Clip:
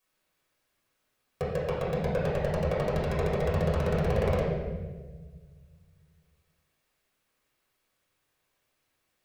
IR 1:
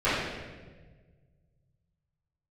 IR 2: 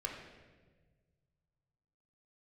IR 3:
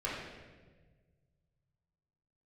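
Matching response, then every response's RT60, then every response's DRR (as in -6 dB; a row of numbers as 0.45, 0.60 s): 3; 1.4, 1.4, 1.4 s; -16.5, -0.5, -7.5 dB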